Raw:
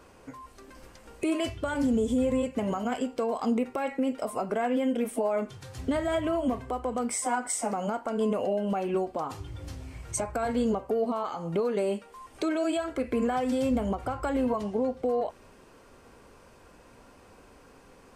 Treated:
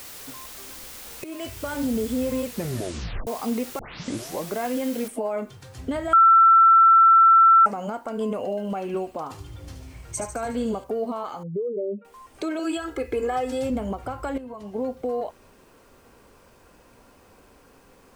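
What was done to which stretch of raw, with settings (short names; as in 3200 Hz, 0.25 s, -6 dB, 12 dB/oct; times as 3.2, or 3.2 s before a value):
1.24–1.78 fade in equal-power, from -14 dB
2.46 tape stop 0.81 s
3.79 tape start 0.75 s
5.08 noise floor step -41 dB -67 dB
6.13–7.66 bleep 1340 Hz -10.5 dBFS
8.4–10.84 thin delay 73 ms, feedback 59%, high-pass 3000 Hz, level -6 dB
11.43–12.05 spectral contrast raised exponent 2.7
12.59–13.7 comb 2.4 ms, depth 84%
14.38–14.81 fade in quadratic, from -13 dB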